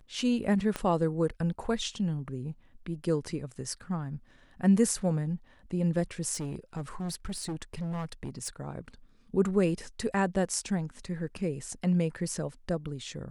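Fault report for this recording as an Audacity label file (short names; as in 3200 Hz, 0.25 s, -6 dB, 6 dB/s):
0.760000	0.760000	pop -17 dBFS
6.330000	8.480000	clipped -31 dBFS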